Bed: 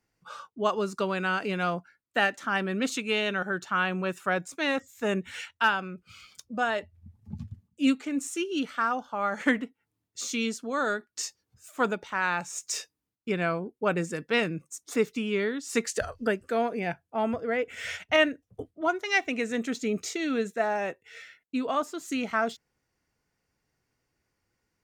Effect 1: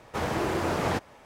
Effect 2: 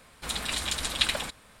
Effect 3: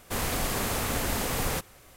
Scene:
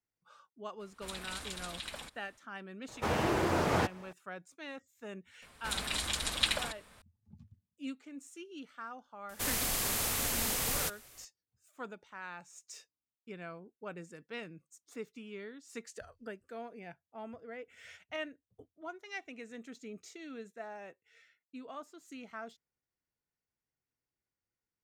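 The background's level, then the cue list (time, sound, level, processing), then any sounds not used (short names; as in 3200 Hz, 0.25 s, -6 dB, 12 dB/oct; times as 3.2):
bed -17.5 dB
0.79 add 2 -12 dB, fades 0.02 s + limiter -15 dBFS
2.88 add 1 -2 dB
5.42 add 2 -4 dB
9.29 add 3 -9.5 dB + high shelf 2200 Hz +11 dB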